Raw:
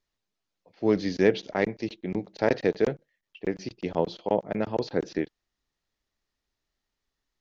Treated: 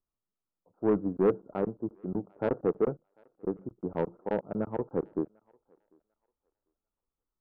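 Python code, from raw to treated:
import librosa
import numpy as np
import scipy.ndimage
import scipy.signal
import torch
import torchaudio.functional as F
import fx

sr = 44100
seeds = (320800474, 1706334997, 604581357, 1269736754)

p1 = scipy.signal.sosfilt(scipy.signal.butter(16, 1400.0, 'lowpass', fs=sr, output='sos'), x)
p2 = fx.peak_eq(p1, sr, hz=660.0, db=-3.5, octaves=0.81)
p3 = 10.0 ** (-19.0 / 20.0) * np.tanh(p2 / 10.0 ** (-19.0 / 20.0))
p4 = fx.quant_float(p3, sr, bits=8, at=(1.07, 1.73))
p5 = p4 + fx.echo_thinned(p4, sr, ms=746, feedback_pct=21, hz=510.0, wet_db=-23, dry=0)
p6 = fx.upward_expand(p5, sr, threshold_db=-39.0, expansion=1.5)
y = F.gain(torch.from_numpy(p6), 2.5).numpy()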